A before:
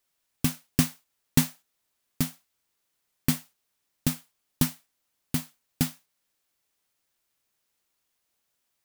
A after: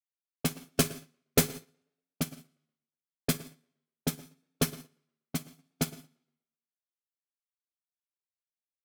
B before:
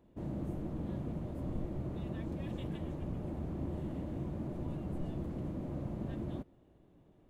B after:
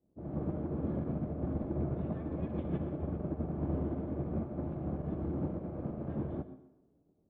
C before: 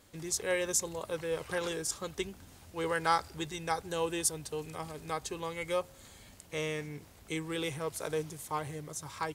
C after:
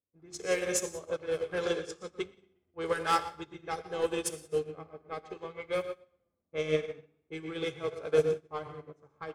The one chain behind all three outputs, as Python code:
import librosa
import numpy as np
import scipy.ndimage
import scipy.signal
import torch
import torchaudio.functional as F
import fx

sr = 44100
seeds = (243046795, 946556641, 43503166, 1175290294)

p1 = np.minimum(x, 2.0 * 10.0 ** (-19.5 / 20.0) - x)
p2 = fx.notch_comb(p1, sr, f0_hz=930.0)
p3 = fx.leveller(p2, sr, passes=2)
p4 = fx.env_lowpass(p3, sr, base_hz=490.0, full_db=-21.5)
p5 = 10.0 ** (-24.0 / 20.0) * np.tanh(p4 / 10.0 ** (-24.0 / 20.0))
p6 = p4 + (p5 * librosa.db_to_amplitude(-10.5))
p7 = fx.dynamic_eq(p6, sr, hz=450.0, q=4.7, threshold_db=-42.0, ratio=4.0, max_db=4)
p8 = fx.hum_notches(p7, sr, base_hz=50, count=8)
p9 = p8 + fx.echo_tape(p8, sr, ms=120, feedback_pct=42, wet_db=-8, lp_hz=5300.0, drive_db=5.0, wow_cents=37, dry=0)
p10 = fx.rev_gated(p9, sr, seeds[0], gate_ms=210, shape='flat', drr_db=5.5)
p11 = fx.upward_expand(p10, sr, threshold_db=-37.0, expansion=2.5)
y = p11 * librosa.db_to_amplitude(-1.0)